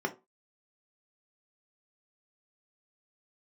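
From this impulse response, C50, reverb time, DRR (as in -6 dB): 16.5 dB, 0.25 s, 2.0 dB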